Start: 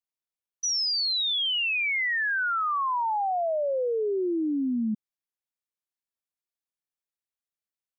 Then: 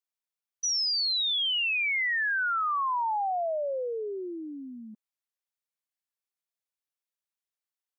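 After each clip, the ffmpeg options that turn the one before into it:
ffmpeg -i in.wav -af "highpass=550,volume=-1dB" out.wav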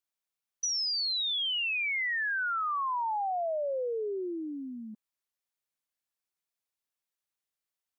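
ffmpeg -i in.wav -af "acompressor=threshold=-31dB:ratio=6,volume=1.5dB" out.wav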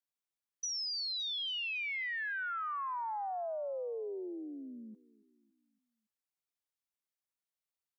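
ffmpeg -i in.wav -af "aecho=1:1:281|562|843|1124:0.0841|0.0429|0.0219|0.0112,volume=-6.5dB" out.wav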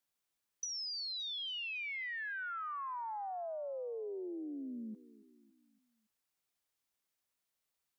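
ffmpeg -i in.wav -af "acompressor=threshold=-47dB:ratio=6,volume=6.5dB" out.wav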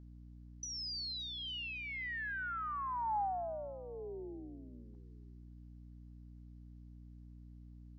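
ffmpeg -i in.wav -af "highpass=frequency=380:width=0.5412,highpass=frequency=380:width=1.3066,equalizer=frequency=510:width_type=q:width=4:gain=-9,equalizer=frequency=830:width_type=q:width=4:gain=7,equalizer=frequency=2400:width_type=q:width=4:gain=-4,equalizer=frequency=3500:width_type=q:width=4:gain=-4,lowpass=frequency=5600:width=0.5412,lowpass=frequency=5600:width=1.3066,aeval=exprs='val(0)+0.00224*(sin(2*PI*60*n/s)+sin(2*PI*2*60*n/s)/2+sin(2*PI*3*60*n/s)/3+sin(2*PI*4*60*n/s)/4+sin(2*PI*5*60*n/s)/5)':channel_layout=same,volume=1dB" out.wav

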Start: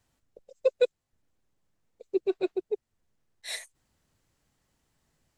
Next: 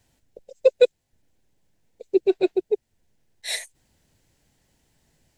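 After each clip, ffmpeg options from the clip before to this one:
ffmpeg -i in.wav -af "equalizer=frequency=1200:width=3.6:gain=-11,volume=8dB" out.wav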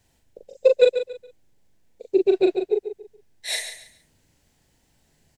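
ffmpeg -i in.wav -filter_complex "[0:a]asplit=2[link_01][link_02];[link_02]adelay=40,volume=-4dB[link_03];[link_01][link_03]amix=inputs=2:normalize=0,asplit=2[link_04][link_05];[link_05]aecho=0:1:140|280|420:0.316|0.0854|0.0231[link_06];[link_04][link_06]amix=inputs=2:normalize=0" out.wav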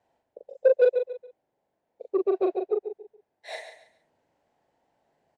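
ffmpeg -i in.wav -af "asoftclip=type=tanh:threshold=-12dB,bandpass=frequency=710:width_type=q:width=1.8:csg=0,volume=4dB" out.wav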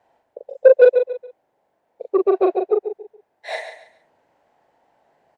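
ffmpeg -i in.wav -af "equalizer=frequency=1100:width_type=o:width=3:gain=8,volume=3.5dB" out.wav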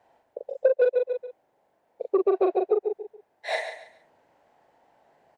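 ffmpeg -i in.wav -af "acompressor=threshold=-19dB:ratio=5" out.wav

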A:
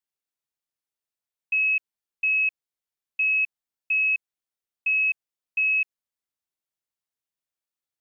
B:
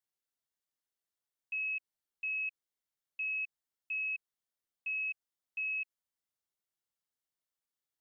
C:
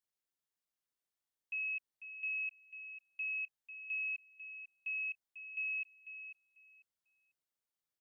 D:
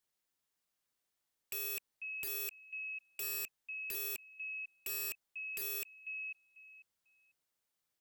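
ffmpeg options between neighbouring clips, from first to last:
ffmpeg -i in.wav -af "alimiter=limit=-23.5dB:level=0:latency=1,bandreject=frequency=2500:width=10,volume=-2.5dB" out.wav
ffmpeg -i in.wav -filter_complex "[0:a]asplit=2[link_01][link_02];[link_02]adelay=495,lowpass=frequency=2400:poles=1,volume=-7.5dB,asplit=2[link_03][link_04];[link_04]adelay=495,lowpass=frequency=2400:poles=1,volume=0.26,asplit=2[link_05][link_06];[link_06]adelay=495,lowpass=frequency=2400:poles=1,volume=0.26[link_07];[link_01][link_03][link_05][link_07]amix=inputs=4:normalize=0,volume=-2.5dB" out.wav
ffmpeg -i in.wav -af "aeval=exprs='(mod(100*val(0)+1,2)-1)/100':channel_layout=same,volume=6dB" out.wav

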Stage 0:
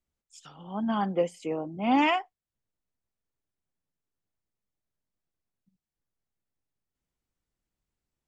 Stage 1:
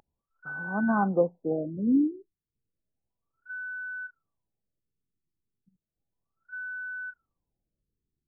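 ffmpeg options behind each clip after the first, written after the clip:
ffmpeg -i in.wav -af "aeval=exprs='val(0)+0.0158*sin(2*PI*1500*n/s)':channel_layout=same,equalizer=frequency=130:width=1.5:gain=2.5,afftfilt=real='re*lt(b*sr/1024,420*pow(1700/420,0.5+0.5*sin(2*PI*0.33*pts/sr)))':imag='im*lt(b*sr/1024,420*pow(1700/420,0.5+0.5*sin(2*PI*0.33*pts/sr)))':win_size=1024:overlap=0.75,volume=2.5dB" out.wav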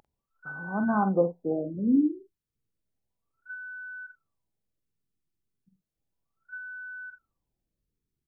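ffmpeg -i in.wav -filter_complex "[0:a]asplit=2[link_01][link_02];[link_02]adelay=47,volume=-9dB[link_03];[link_01][link_03]amix=inputs=2:normalize=0" out.wav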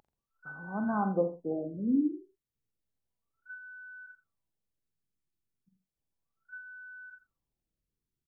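ffmpeg -i in.wav -af "aecho=1:1:85:0.224,volume=-5dB" out.wav

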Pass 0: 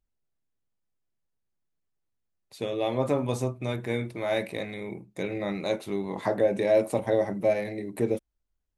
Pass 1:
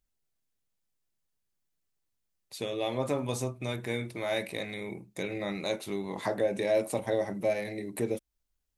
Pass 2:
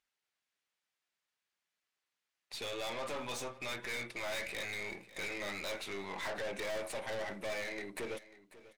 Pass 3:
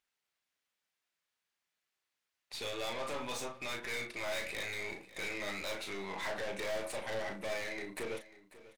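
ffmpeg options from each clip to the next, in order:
ffmpeg -i in.wav -filter_complex "[0:a]highshelf=frequency=2400:gain=8,asplit=2[link_01][link_02];[link_02]acompressor=threshold=-34dB:ratio=6,volume=-2dB[link_03];[link_01][link_03]amix=inputs=2:normalize=0,volume=-6.5dB" out.wav
ffmpeg -i in.wav -af "bandpass=frequency=2000:width_type=q:width=0.8:csg=0,aeval=exprs='(tanh(178*val(0)+0.4)-tanh(0.4))/178':channel_layout=same,aecho=1:1:543|1086:0.133|0.032,volume=8.5dB" out.wav
ffmpeg -i in.wav -filter_complex "[0:a]asplit=2[link_01][link_02];[link_02]adelay=36,volume=-7dB[link_03];[link_01][link_03]amix=inputs=2:normalize=0" out.wav

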